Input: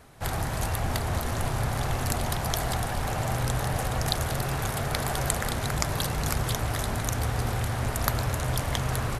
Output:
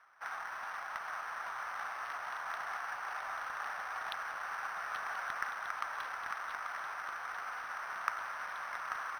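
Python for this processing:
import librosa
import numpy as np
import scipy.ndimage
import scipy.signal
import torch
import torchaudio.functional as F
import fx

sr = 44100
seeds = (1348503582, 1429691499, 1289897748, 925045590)

y = scipy.ndimage.median_filter(x, 15, mode='constant')
y = fx.ladder_highpass(y, sr, hz=1100.0, resonance_pct=40)
y = fx.high_shelf(y, sr, hz=4600.0, db=-9.5)
y = y + 10.0 ** (-8.0 / 20.0) * np.pad(y, (int(838 * sr / 1000.0), 0))[:len(y)]
y = np.interp(np.arange(len(y)), np.arange(len(y))[::6], y[::6])
y = y * librosa.db_to_amplitude(6.0)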